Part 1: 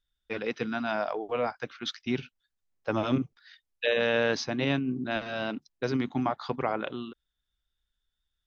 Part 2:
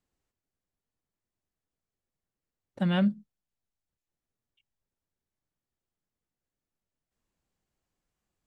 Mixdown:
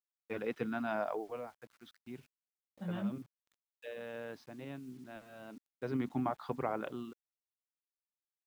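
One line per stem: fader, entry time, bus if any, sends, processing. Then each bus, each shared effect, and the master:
1.19 s -4.5 dB -> 1.49 s -17.5 dB -> 5.44 s -17.5 dB -> 6 s -5.5 dB, 0.00 s, no send, high shelf 3700 Hz -10 dB
-11.5 dB, 0.00 s, no send, detuned doubles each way 34 cents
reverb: off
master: high shelf 3100 Hz -7 dB; bit-crush 11-bit

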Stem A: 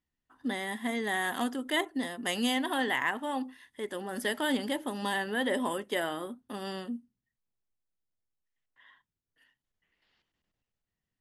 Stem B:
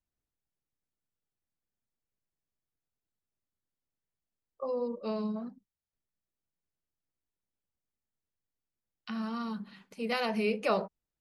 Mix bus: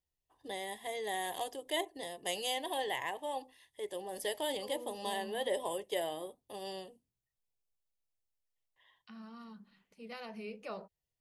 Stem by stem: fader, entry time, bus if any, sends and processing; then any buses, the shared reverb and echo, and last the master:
-1.5 dB, 0.00 s, no send, fixed phaser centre 580 Hz, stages 4
-14.5 dB, 0.00 s, no send, dry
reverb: off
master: dry

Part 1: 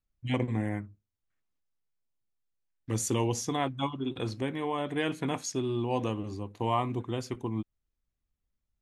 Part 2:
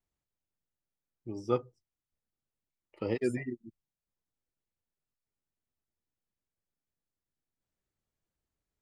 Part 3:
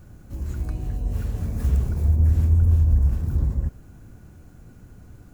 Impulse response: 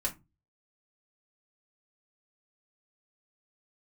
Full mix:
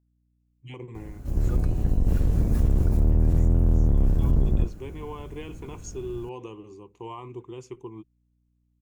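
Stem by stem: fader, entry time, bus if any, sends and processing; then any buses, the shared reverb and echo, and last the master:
-10.5 dB, 0.40 s, no send, ripple EQ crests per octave 0.72, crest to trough 11 dB; limiter -20 dBFS, peak gain reduction 6.5 dB; bell 400 Hz +5 dB 0.78 oct; auto duck -12 dB, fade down 0.25 s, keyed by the second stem
-13.0 dB, 0.00 s, no send, hum 60 Hz, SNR 14 dB
+0.5 dB, 0.95 s, no send, octaver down 1 oct, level +4 dB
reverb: off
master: limiter -14 dBFS, peak gain reduction 11 dB

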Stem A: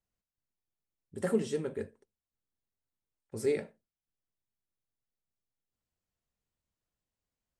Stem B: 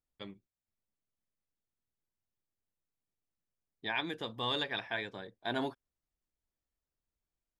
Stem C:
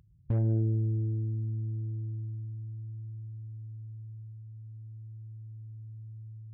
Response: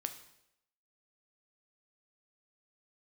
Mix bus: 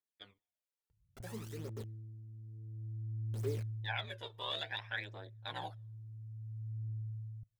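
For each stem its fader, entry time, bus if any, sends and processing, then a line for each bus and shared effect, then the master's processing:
-17.0 dB, 0.00 s, send -22 dB, requantised 6-bit, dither none
-4.0 dB, 0.00 s, send -22 dB, HPF 510 Hz 12 dB/oct; notch 1200 Hz, Q 6.4; ring modulator 99 Hz
2.26 s -16 dB -> 2.85 s -7 dB -> 3.94 s -7 dB -> 4.29 s -16.5 dB -> 5.34 s -16.5 dB -> 5.95 s -5 dB, 0.90 s, send -14.5 dB, compressor, threshold -36 dBFS, peak gain reduction 12 dB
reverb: on, RT60 0.80 s, pre-delay 6 ms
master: phaser 0.58 Hz, delay 2.3 ms, feedback 59%

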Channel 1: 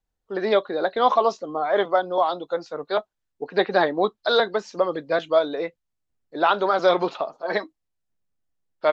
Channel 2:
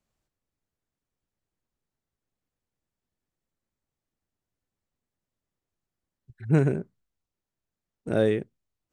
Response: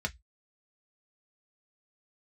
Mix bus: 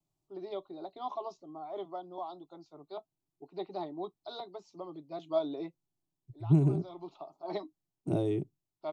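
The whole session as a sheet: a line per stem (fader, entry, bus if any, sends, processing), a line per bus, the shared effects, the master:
5.12 s -19.5 dB -> 5.37 s -11.5 dB, 0.00 s, no send, auto duck -18 dB, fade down 0.25 s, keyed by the second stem
-5.0 dB, 0.00 s, no send, compressor, threshold -21 dBFS, peak gain reduction 6.5 dB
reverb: off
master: bell 200 Hz +9 dB 2.4 oct; vibrato 1.4 Hz 31 cents; fixed phaser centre 330 Hz, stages 8

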